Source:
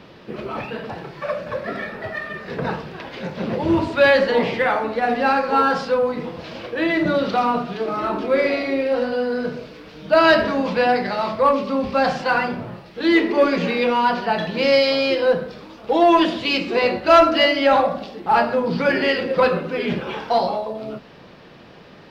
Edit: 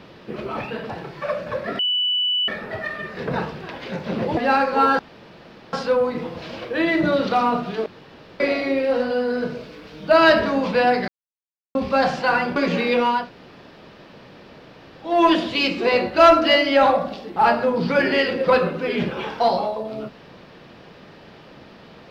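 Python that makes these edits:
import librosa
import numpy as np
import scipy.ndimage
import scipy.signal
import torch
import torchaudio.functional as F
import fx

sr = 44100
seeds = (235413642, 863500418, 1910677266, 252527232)

y = fx.edit(x, sr, fx.insert_tone(at_s=1.79, length_s=0.69, hz=2970.0, db=-18.0),
    fx.cut(start_s=3.68, length_s=1.45),
    fx.insert_room_tone(at_s=5.75, length_s=0.74),
    fx.room_tone_fill(start_s=7.88, length_s=0.54),
    fx.silence(start_s=11.1, length_s=0.67),
    fx.cut(start_s=12.58, length_s=0.88),
    fx.room_tone_fill(start_s=14.09, length_s=1.95, crossfade_s=0.24), tone=tone)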